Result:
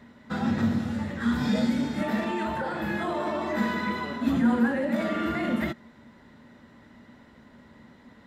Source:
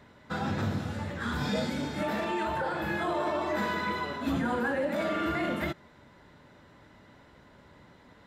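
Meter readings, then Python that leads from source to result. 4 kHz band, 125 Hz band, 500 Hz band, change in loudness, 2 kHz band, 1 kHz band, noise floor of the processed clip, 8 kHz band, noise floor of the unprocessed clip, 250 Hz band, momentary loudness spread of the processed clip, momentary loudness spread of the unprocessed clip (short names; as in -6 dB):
0.0 dB, +2.0 dB, +0.5 dB, +3.5 dB, +1.0 dB, 0.0 dB, -54 dBFS, n/a, -57 dBFS, +7.5 dB, 6 LU, 5 LU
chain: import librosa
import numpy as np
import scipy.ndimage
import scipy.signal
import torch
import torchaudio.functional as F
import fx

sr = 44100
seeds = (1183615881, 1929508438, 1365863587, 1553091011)

y = fx.small_body(x, sr, hz=(230.0, 1900.0), ring_ms=85, db=13)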